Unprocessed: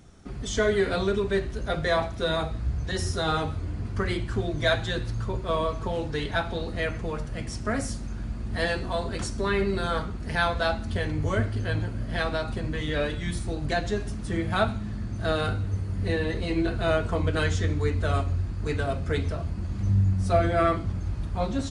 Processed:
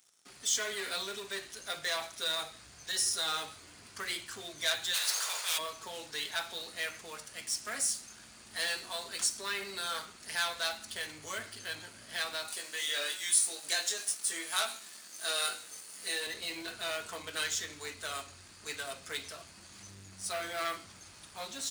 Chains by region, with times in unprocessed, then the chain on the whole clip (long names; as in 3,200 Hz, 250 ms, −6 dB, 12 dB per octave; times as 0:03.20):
0:04.93–0:05.57: ceiling on every frequency bin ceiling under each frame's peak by 28 dB + high-pass filter 480 Hz 24 dB per octave + hard clipping −29 dBFS
0:12.48–0:16.27: high-pass filter 330 Hz + high-shelf EQ 7,100 Hz +11.5 dB + double-tracking delay 21 ms −4 dB
whole clip: low-shelf EQ 96 Hz −5.5 dB; leveller curve on the samples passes 2; first difference